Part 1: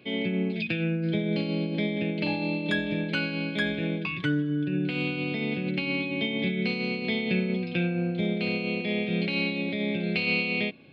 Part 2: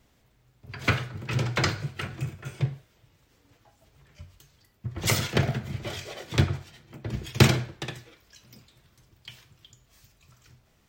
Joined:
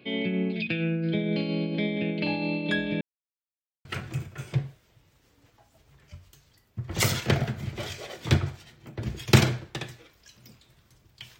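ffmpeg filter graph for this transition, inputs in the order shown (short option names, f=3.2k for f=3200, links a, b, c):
-filter_complex "[0:a]apad=whole_dur=11.39,atrim=end=11.39,asplit=2[a][b];[a]atrim=end=3.01,asetpts=PTS-STARTPTS,afade=t=out:st=3.006:d=0.004:c=hsin[c];[b]atrim=start=3.01:end=3.85,asetpts=PTS-STARTPTS,volume=0[d];[1:a]atrim=start=1.92:end=9.46,asetpts=PTS-STARTPTS,afade=t=in:d=0.004:c=hsin[e];[c][d][e]concat=n=3:v=0:a=1"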